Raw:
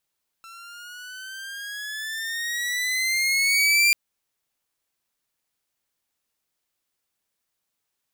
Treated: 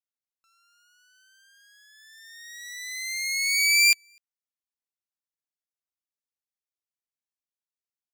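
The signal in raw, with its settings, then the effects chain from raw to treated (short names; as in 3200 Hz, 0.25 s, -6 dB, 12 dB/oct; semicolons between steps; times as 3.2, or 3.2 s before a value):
gliding synth tone saw, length 3.49 s, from 1340 Hz, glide +10 st, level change +27 dB, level -12 dB
bell 5800 Hz +5.5 dB 0.68 oct; echo 0.25 s -16 dB; upward expander 2.5:1, over -32 dBFS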